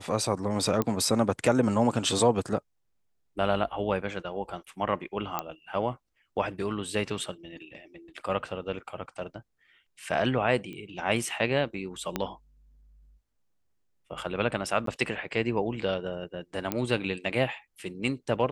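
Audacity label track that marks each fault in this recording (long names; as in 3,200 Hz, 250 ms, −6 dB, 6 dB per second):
0.820000	0.820000	click −13 dBFS
5.390000	5.390000	click −14 dBFS
10.730000	10.730000	click −29 dBFS
12.160000	12.160000	click −13 dBFS
14.860000	14.870000	drop-out 13 ms
16.720000	16.720000	click −12 dBFS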